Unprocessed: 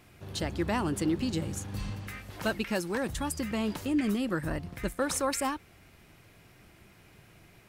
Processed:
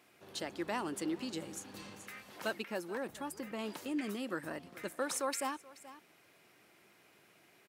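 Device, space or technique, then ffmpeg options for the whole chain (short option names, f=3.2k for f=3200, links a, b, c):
ducked delay: -filter_complex "[0:a]highpass=300,asettb=1/sr,asplit=3[a][b][c];[a]atrim=end=2.624[d];[b]atrim=start=2.62:end=3.59,asetpts=PTS-STARTPTS,afade=t=in:d=0.004:c=qsin,afade=t=out:st=0.966:d=0.004:c=qsin,equalizer=f=5.8k:t=o:w=2.8:g=-7.5[e];[c]atrim=start=3.586[f];[d][e]acrossfade=d=0.004:c1=hsin:c2=qsin[g];[g][f]acrossfade=d=0.004:c1=qsin:c2=hsin,asplit=3[h][i][j];[i]adelay=429,volume=-8dB[k];[j]apad=whole_len=357622[l];[k][l]sidechaincompress=threshold=-42dB:ratio=8:attack=7.2:release=645[m];[h][m]amix=inputs=2:normalize=0,volume=-5.5dB"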